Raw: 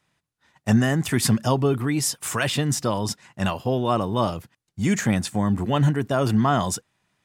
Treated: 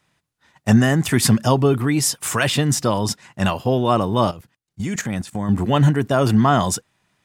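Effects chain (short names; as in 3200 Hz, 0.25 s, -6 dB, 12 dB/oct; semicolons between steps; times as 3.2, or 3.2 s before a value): 4.31–5.49 level quantiser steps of 14 dB; gain +4.5 dB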